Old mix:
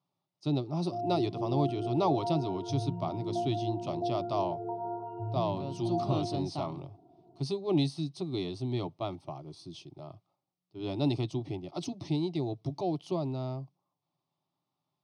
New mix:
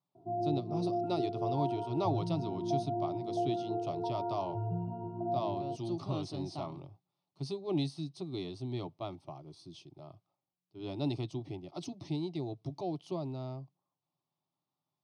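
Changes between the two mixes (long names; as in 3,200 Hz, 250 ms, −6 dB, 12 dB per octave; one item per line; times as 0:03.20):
speech −5.0 dB
background: entry −0.65 s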